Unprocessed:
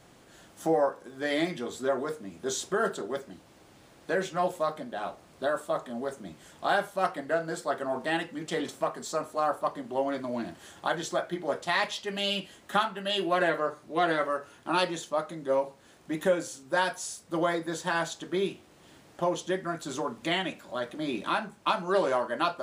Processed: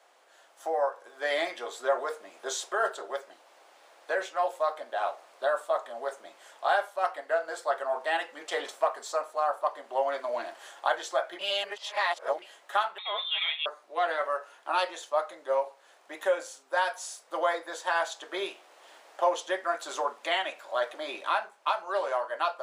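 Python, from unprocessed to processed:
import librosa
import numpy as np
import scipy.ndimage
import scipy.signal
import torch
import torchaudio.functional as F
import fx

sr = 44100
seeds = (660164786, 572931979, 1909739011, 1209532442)

y = fx.freq_invert(x, sr, carrier_hz=3900, at=(12.98, 13.66))
y = fx.edit(y, sr, fx.reverse_span(start_s=11.39, length_s=1.03), tone=tone)
y = scipy.signal.sosfilt(scipy.signal.butter(4, 590.0, 'highpass', fs=sr, output='sos'), y)
y = fx.tilt_eq(y, sr, slope=-2.0)
y = fx.rider(y, sr, range_db=4, speed_s=0.5)
y = F.gain(torch.from_numpy(y), 2.0).numpy()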